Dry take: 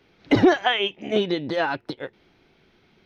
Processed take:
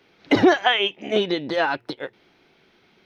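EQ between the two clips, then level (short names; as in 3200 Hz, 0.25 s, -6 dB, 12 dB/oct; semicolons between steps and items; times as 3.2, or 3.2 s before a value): low shelf 79 Hz -8 dB; low shelf 290 Hz -5 dB; notches 60/120 Hz; +3.0 dB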